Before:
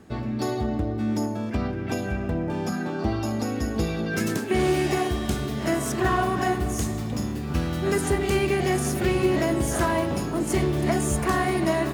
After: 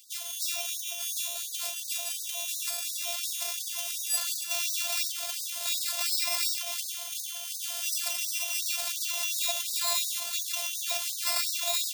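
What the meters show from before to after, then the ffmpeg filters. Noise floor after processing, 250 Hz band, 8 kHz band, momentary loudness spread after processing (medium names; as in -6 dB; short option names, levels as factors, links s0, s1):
-38 dBFS, under -40 dB, +6.0 dB, 6 LU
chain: -af "equalizer=f=75:w=1.9:g=12.5,alimiter=limit=0.168:level=0:latency=1:release=42,areverse,acompressor=mode=upward:threshold=0.0141:ratio=2.5,areverse,acrusher=samples=14:mix=1:aa=0.000001,afftfilt=real='hypot(re,im)*cos(PI*b)':imag='0':win_size=512:overlap=0.75,aexciter=amount=4.2:drive=7.5:freq=2700,afftfilt=real='re*gte(b*sr/1024,460*pow(3800/460,0.5+0.5*sin(2*PI*2.8*pts/sr)))':imag='im*gte(b*sr/1024,460*pow(3800/460,0.5+0.5*sin(2*PI*2.8*pts/sr)))':win_size=1024:overlap=0.75,volume=0.596"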